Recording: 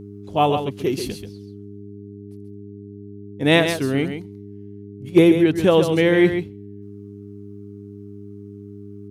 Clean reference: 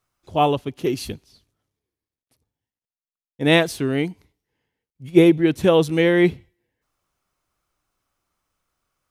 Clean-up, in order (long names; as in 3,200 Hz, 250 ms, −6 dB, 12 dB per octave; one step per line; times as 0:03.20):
clipped peaks rebuilt −4 dBFS
hum removal 101.4 Hz, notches 4
echo removal 135 ms −8 dB